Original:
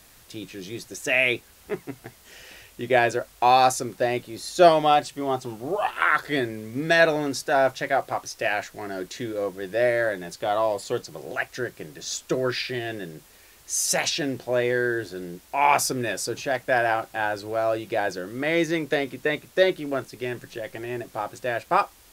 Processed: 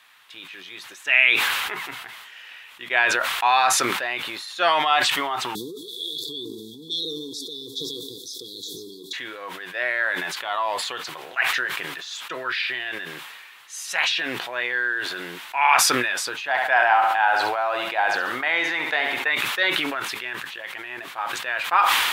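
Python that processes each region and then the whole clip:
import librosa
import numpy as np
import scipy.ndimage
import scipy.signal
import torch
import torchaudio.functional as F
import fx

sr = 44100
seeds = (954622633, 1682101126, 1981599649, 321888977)

y = fx.chain(x, sr, fx.brickwall_bandstop(low_hz=490.0, high_hz=3300.0),
    fx.echo_stepped(ms=125, hz=290.0, octaves=1.4, feedback_pct=70, wet_db=-8.0),
    fx.env_flatten(amount_pct=70), at=(5.55, 9.13))
y = fx.chain(y, sr, fx.peak_eq(hz=790.0, db=10.5, octaves=0.56),
    fx.echo_feedback(ms=68, feedback_pct=31, wet_db=-10.5), at=(16.48, 19.28))
y = fx.highpass(y, sr, hz=550.0, slope=6)
y = fx.band_shelf(y, sr, hz=1800.0, db=15.5, octaves=2.5)
y = fx.sustainer(y, sr, db_per_s=27.0)
y = F.gain(torch.from_numpy(y), -10.5).numpy()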